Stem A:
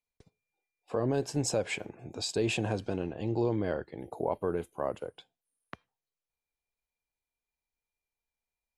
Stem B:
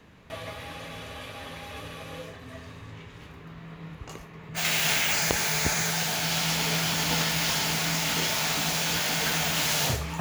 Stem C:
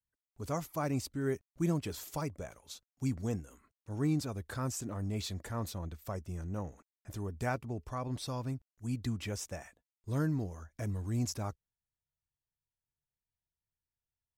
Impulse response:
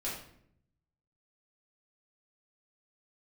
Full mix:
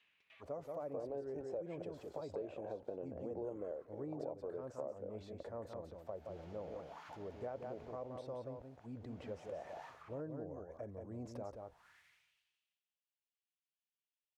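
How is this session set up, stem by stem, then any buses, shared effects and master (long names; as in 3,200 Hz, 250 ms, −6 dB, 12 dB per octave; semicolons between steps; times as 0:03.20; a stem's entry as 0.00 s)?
+1.5 dB, 0.00 s, no send, no echo send, amplitude tremolo 1.7 Hz, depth 40%
0:07.82 −7 dB → 0:08.24 −19.5 dB → 0:09.05 −19.5 dB → 0:09.30 −7 dB, 0.00 s, no send, no echo send, downward compressor 10 to 1, threshold −33 dBFS, peak gain reduction 14 dB; automatic ducking −21 dB, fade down 0.95 s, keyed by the first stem
+2.0 dB, 0.00 s, no send, echo send −6 dB, level that may fall only so fast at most 41 dB per second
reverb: not used
echo: single-tap delay 177 ms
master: low-shelf EQ 110 Hz +8.5 dB; envelope filter 540–2,900 Hz, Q 3.2, down, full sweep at −31 dBFS; downward compressor 4 to 1, threshold −41 dBFS, peak gain reduction 11.5 dB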